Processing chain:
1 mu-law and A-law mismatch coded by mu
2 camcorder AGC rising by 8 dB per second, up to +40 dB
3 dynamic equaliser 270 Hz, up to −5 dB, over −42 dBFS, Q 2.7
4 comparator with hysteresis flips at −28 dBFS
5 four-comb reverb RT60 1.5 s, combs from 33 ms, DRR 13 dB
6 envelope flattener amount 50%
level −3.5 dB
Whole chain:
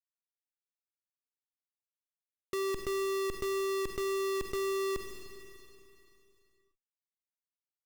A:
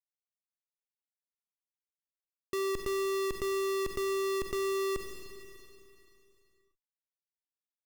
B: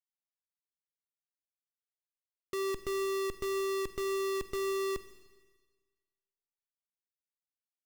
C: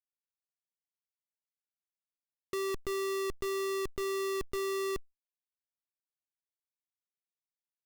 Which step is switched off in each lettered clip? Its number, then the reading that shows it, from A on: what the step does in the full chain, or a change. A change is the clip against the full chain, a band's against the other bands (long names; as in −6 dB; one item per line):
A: 3, change in integrated loudness +1.0 LU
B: 6, change in momentary loudness spread −10 LU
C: 5, change in momentary loudness spread −10 LU